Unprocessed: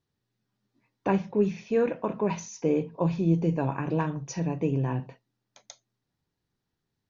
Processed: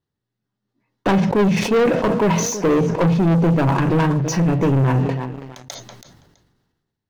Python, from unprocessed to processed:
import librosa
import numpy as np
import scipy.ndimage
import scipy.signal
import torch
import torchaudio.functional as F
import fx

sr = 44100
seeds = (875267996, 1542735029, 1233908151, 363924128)

p1 = 10.0 ** (-21.0 / 20.0) * (np.abs((x / 10.0 ** (-21.0 / 20.0) + 3.0) % 4.0 - 2.0) - 1.0)
p2 = x + F.gain(torch.from_numpy(p1), -6.0).numpy()
p3 = fx.high_shelf(p2, sr, hz=4600.0, db=-8.0)
p4 = fx.notch(p3, sr, hz=2400.0, q=12.0)
p5 = p4 + fx.echo_feedback(p4, sr, ms=328, feedback_pct=26, wet_db=-18.5, dry=0)
p6 = fx.leveller(p5, sr, passes=3)
p7 = fx.sustainer(p6, sr, db_per_s=40.0)
y = F.gain(torch.from_numpy(p7), 1.5).numpy()